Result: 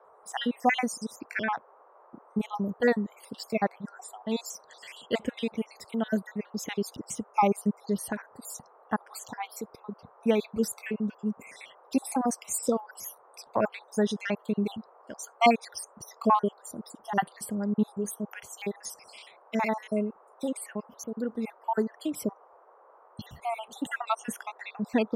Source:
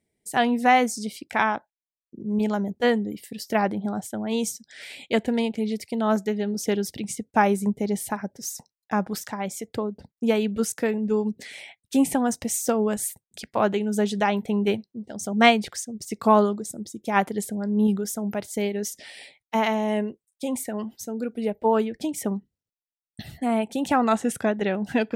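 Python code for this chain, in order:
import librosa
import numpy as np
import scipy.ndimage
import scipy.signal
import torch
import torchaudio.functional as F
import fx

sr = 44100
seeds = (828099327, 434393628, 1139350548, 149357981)

y = fx.spec_dropout(x, sr, seeds[0], share_pct=61)
y = fx.dmg_noise_band(y, sr, seeds[1], low_hz=420.0, high_hz=1200.0, level_db=-55.0)
y = y * librosa.db_to_amplitude(-2.0)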